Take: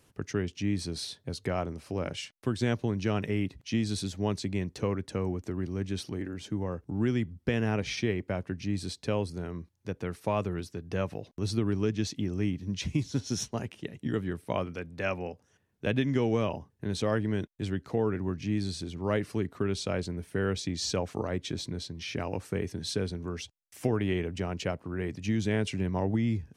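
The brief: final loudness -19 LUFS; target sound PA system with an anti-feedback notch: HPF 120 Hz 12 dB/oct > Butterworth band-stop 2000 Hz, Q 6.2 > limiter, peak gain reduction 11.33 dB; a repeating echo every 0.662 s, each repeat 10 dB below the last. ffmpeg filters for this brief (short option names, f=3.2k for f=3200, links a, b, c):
-af "highpass=120,asuperstop=centerf=2000:order=8:qfactor=6.2,aecho=1:1:662|1324|1986|2648:0.316|0.101|0.0324|0.0104,volume=17.5dB,alimiter=limit=-8.5dB:level=0:latency=1"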